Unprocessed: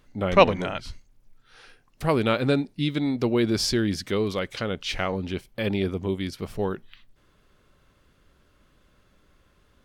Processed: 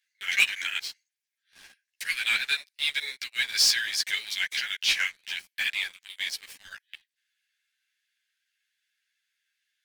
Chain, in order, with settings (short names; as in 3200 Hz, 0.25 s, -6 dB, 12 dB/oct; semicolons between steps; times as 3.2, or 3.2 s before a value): Chebyshev high-pass 1600 Hz, order 6; sample leveller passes 3; ensemble effect; gain +1 dB